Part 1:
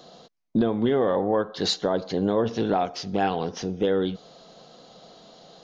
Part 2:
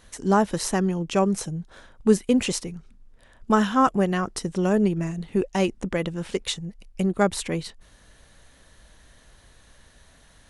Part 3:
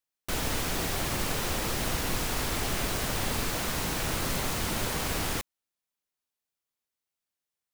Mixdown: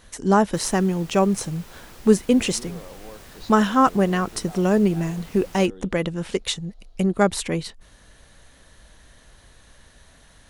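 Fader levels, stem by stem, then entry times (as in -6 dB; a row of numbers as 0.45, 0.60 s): -19.5, +2.5, -15.5 dB; 1.75, 0.00, 0.25 s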